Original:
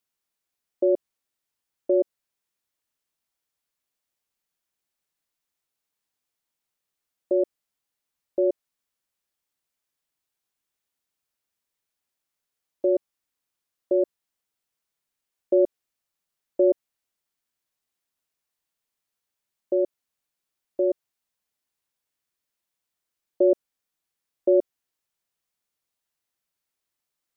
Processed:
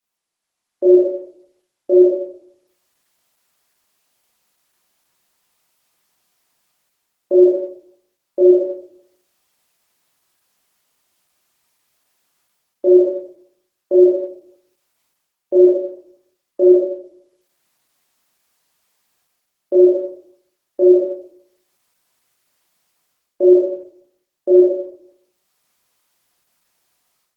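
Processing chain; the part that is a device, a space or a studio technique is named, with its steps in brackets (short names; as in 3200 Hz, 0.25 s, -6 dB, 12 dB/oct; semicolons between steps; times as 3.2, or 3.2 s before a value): far-field microphone of a smart speaker (reverb RT60 0.65 s, pre-delay 18 ms, DRR -7.5 dB; HPF 150 Hz 6 dB/oct; AGC gain up to 13 dB; gain -1 dB; Opus 16 kbps 48000 Hz)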